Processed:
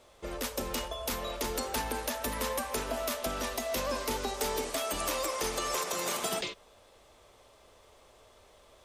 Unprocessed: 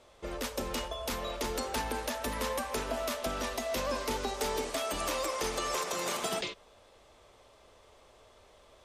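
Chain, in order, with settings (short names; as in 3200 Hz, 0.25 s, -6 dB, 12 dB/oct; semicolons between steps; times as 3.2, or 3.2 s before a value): high shelf 11000 Hz +10 dB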